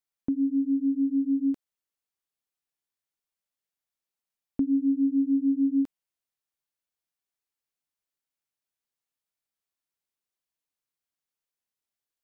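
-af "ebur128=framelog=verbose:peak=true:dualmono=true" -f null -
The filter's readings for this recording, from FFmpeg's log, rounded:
Integrated loudness:
  I:         -23.1 LUFS
  Threshold: -33.4 LUFS
Loudness range:
  LRA:         9.3 LU
  Threshold: -47.4 LUFS
  LRA low:   -34.6 LUFS
  LRA high:  -25.3 LUFS
True peak:
  Peak:      -17.8 dBFS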